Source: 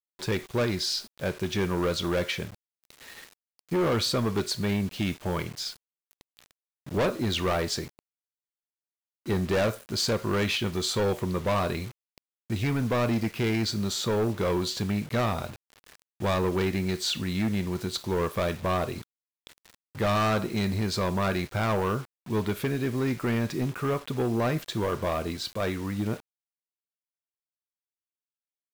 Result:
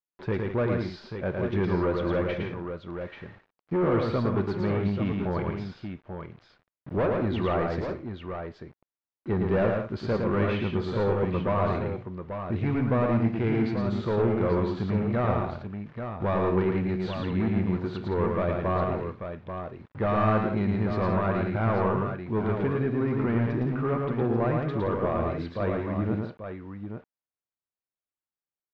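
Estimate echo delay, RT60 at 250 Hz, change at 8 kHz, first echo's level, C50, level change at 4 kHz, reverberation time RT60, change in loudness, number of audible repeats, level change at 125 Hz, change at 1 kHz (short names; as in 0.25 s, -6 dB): 0.111 s, none, under -25 dB, -3.5 dB, none, -14.5 dB, none, +0.5 dB, 3, +2.5 dB, +1.0 dB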